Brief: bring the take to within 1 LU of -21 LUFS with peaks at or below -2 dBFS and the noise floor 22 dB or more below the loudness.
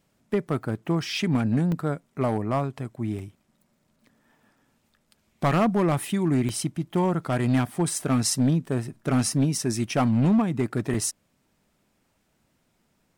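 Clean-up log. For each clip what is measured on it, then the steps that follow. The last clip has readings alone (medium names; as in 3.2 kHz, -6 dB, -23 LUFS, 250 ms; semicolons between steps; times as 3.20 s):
clipped samples 1.1%; clipping level -16.0 dBFS; dropouts 7; longest dropout 2.0 ms; loudness -25.0 LUFS; peak level -16.0 dBFS; loudness target -21.0 LUFS
-> clip repair -16 dBFS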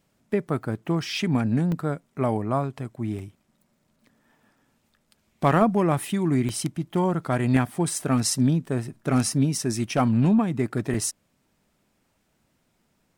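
clipped samples 0.0%; dropouts 7; longest dropout 2.0 ms
-> interpolate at 1.17/1.72/3.19/6.49/7.95/9.90/10.94 s, 2 ms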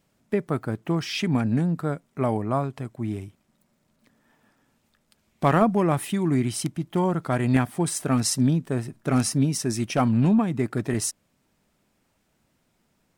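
dropouts 0; loudness -24.5 LUFS; peak level -7.0 dBFS; loudness target -21.0 LUFS
-> trim +3.5 dB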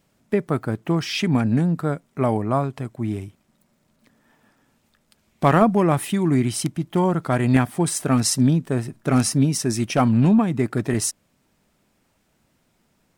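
loudness -21.0 LUFS; peak level -3.5 dBFS; noise floor -67 dBFS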